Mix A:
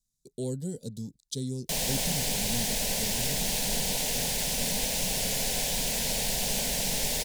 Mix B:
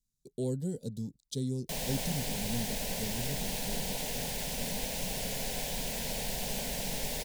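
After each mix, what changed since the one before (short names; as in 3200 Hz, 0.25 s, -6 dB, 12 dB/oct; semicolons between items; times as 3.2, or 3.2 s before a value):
background -3.5 dB; master: add bell 7100 Hz -6 dB 2.5 oct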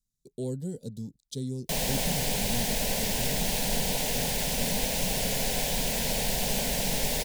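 background +7.0 dB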